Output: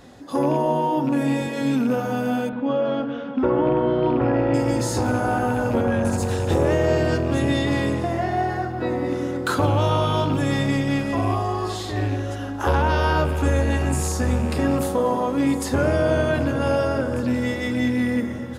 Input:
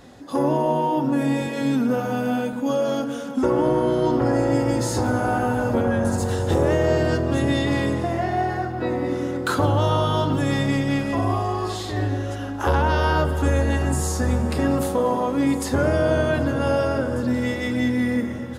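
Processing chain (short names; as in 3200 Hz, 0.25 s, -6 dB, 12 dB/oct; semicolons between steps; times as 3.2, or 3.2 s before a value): rattling part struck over -22 dBFS, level -31 dBFS; 2.49–4.54 LPF 3300 Hz 24 dB/oct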